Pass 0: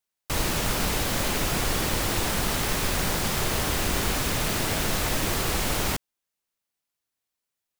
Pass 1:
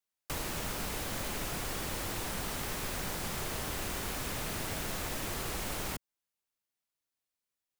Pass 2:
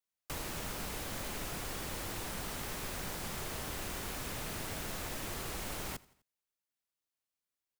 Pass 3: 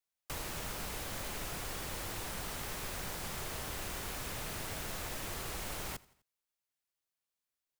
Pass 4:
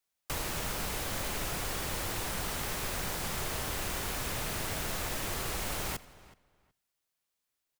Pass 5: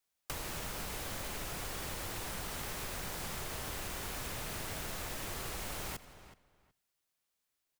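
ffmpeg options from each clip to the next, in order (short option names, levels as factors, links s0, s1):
-filter_complex "[0:a]acrossover=split=190|450|3000|6200[s0][s1][s2][s3][s4];[s0]acompressor=threshold=0.02:ratio=4[s5];[s1]acompressor=threshold=0.00891:ratio=4[s6];[s2]acompressor=threshold=0.0178:ratio=4[s7];[s3]acompressor=threshold=0.00631:ratio=4[s8];[s4]acompressor=threshold=0.0178:ratio=4[s9];[s5][s6][s7][s8][s9]amix=inputs=5:normalize=0,volume=0.531"
-af "aecho=1:1:84|168|252:0.075|0.0382|0.0195,volume=0.668"
-af "equalizer=f=250:t=o:w=1.2:g=-3.5"
-filter_complex "[0:a]asplit=2[s0][s1];[s1]adelay=372,lowpass=f=3400:p=1,volume=0.112,asplit=2[s2][s3];[s3]adelay=372,lowpass=f=3400:p=1,volume=0.19[s4];[s0][s2][s4]amix=inputs=3:normalize=0,volume=1.88"
-af "acompressor=threshold=0.0141:ratio=6"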